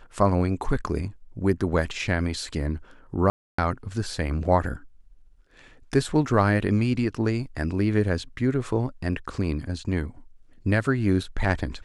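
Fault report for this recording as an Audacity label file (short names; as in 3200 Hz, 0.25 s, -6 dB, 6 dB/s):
3.300000	3.580000	gap 0.284 s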